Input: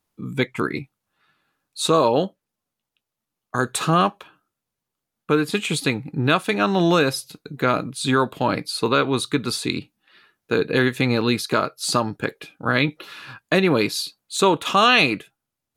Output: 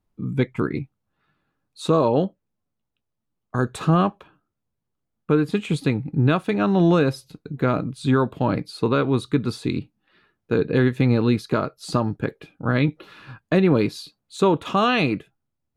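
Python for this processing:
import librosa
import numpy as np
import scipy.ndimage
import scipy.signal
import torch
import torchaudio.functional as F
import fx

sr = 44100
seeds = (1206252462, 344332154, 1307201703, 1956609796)

y = fx.tilt_eq(x, sr, slope=-3.0)
y = y * 10.0 ** (-4.0 / 20.0)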